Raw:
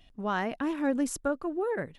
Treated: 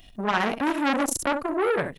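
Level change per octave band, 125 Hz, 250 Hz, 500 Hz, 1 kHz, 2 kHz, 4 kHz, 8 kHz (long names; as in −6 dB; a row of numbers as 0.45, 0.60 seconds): can't be measured, +3.0 dB, +5.0 dB, +8.5 dB, +9.0 dB, +12.5 dB, +9.0 dB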